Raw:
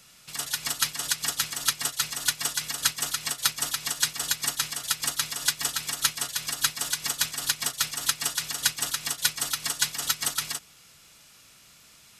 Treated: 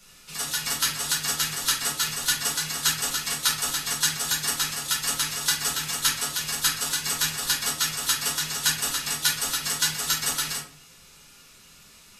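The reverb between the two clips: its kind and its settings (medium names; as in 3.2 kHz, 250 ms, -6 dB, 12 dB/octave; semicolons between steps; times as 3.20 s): simulated room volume 32 m³, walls mixed, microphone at 1.2 m; trim -4 dB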